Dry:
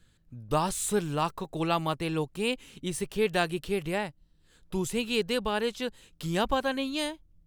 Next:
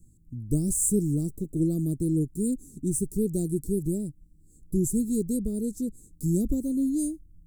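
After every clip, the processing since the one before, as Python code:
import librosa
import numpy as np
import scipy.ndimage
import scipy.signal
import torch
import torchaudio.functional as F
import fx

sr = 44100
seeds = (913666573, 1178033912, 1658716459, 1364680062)

y = scipy.signal.sosfilt(scipy.signal.ellip(3, 1.0, 50, [320.0, 7700.0], 'bandstop', fs=sr, output='sos'), x)
y = y * librosa.db_to_amplitude(8.0)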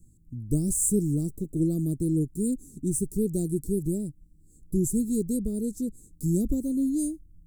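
y = x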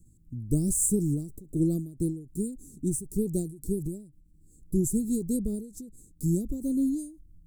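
y = fx.end_taper(x, sr, db_per_s=110.0)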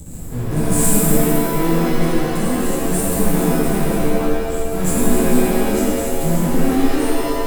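y = fx.power_curve(x, sr, exponent=0.35)
y = fx.rev_shimmer(y, sr, seeds[0], rt60_s=1.9, semitones=7, shimmer_db=-2, drr_db=-7.0)
y = y * librosa.db_to_amplitude(-8.5)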